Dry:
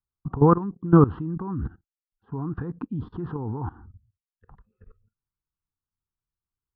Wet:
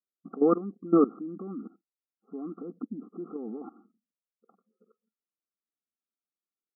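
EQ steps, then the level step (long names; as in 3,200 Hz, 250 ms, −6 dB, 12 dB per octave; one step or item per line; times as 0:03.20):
linear-phase brick-wall band-pass 190–1,400 Hz
Butterworth band-reject 950 Hz, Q 2.1
−2.5 dB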